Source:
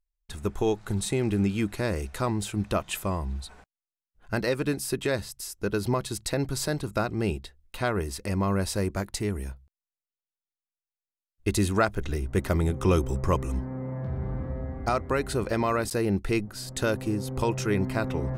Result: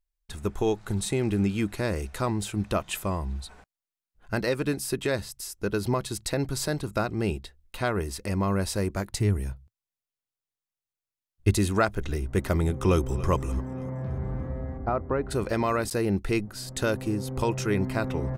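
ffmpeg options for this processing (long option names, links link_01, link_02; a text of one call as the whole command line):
ffmpeg -i in.wav -filter_complex "[0:a]asettb=1/sr,asplit=3[link_01][link_02][link_03];[link_01]atrim=end=9.124[link_04];[link_02]atrim=start=9.12:end=11.54,asetpts=PTS-STARTPTS,afade=type=in:duration=0.004:curve=qsin,afade=type=out:start_time=2.416:duration=0.004:curve=qsin,equalizer=frequency=110:width=1.5:gain=10[link_05];[link_03]atrim=start=11.536[link_06];[link_04][link_05]acrossfade=duration=0.004:curve1=hsin:curve2=qsin[link_07];[link_07][link_06]acrossfade=duration=0.004:curve1=qsin:curve2=hsin,asplit=2[link_08][link_09];[link_09]afade=type=in:start_time=12.82:duration=0.01,afade=type=out:start_time=13.31:duration=0.01,aecho=0:1:290|580|870|1160|1450:0.16788|0.0839402|0.0419701|0.0209851|0.0104925[link_10];[link_08][link_10]amix=inputs=2:normalize=0,asplit=3[link_11][link_12][link_13];[link_11]afade=type=out:start_time=14.77:duration=0.02[link_14];[link_12]lowpass=1200,afade=type=in:start_time=14.77:duration=0.02,afade=type=out:start_time=15.3:duration=0.02[link_15];[link_13]afade=type=in:start_time=15.3:duration=0.02[link_16];[link_14][link_15][link_16]amix=inputs=3:normalize=0" out.wav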